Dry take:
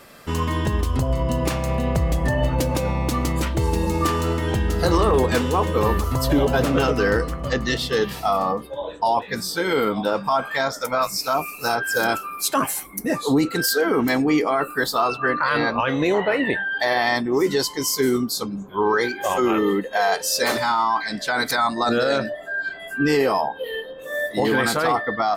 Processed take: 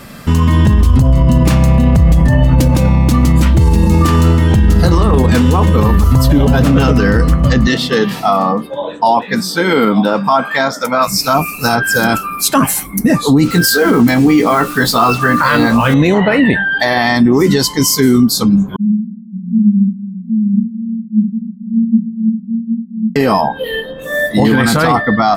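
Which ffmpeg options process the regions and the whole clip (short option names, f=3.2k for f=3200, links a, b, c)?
-filter_complex "[0:a]asettb=1/sr,asplit=3[a][b][c];[a]atrim=end=7.674[d];[b]atrim=start=7.67:end=11.08,asetpts=PTS-STARTPTS,afade=t=in:d=0.004:c=qsin,afade=t=out:st=3.406:d=0.004:c=qsin,highpass=240,highshelf=f=5.3k:g=-6.5[e];[c]atrim=start=11.076[f];[d][e]acrossfade=d=0.004:c1=hsin:c2=qsin[g];[g][f]acrossfade=d=0.004:c1=qsin:c2=hsin,asettb=1/sr,asplit=3[h][i][j];[h]atrim=end=13.444[k];[i]atrim=start=13.44:end=15.94,asetpts=PTS-STARTPTS,afade=t=in:d=0.004:c=qsin,afade=t=out:st=2.496:d=0.004:c=qsin,acrusher=bits=5:mix=0:aa=0.5,asplit=2[l][m];[m]adelay=17,volume=-6dB[n];[l][n]amix=inputs=2:normalize=0,atrim=end_sample=110250[o];[j]atrim=start=15.936[p];[k][o]acrossfade=d=0.004:c1=hsin:c2=qsin[q];[q][p]acrossfade=d=0.004:c1=qsin:c2=hsin,asettb=1/sr,asplit=3[r][s][t];[r]atrim=end=18.764[u];[s]atrim=start=18.76:end=23.16,asetpts=PTS-STARTPTS,afade=t=in:d=0.004:c=qsin,afade=t=out:st=4.396:d=0.004:c=qsin,asuperpass=centerf=200:order=20:qfactor=3.5,aecho=1:1:62|226|768:0.447|0.126|0.668,atrim=end_sample=194040[v];[t]atrim=start=23.156[w];[u][v]acrossfade=d=0.004:c1=hsin:c2=qsin[x];[x][w]acrossfade=d=0.004:c1=qsin:c2=hsin,lowshelf=f=290:t=q:w=1.5:g=8,alimiter=level_in=11.5dB:limit=-1dB:release=50:level=0:latency=1,volume=-1dB"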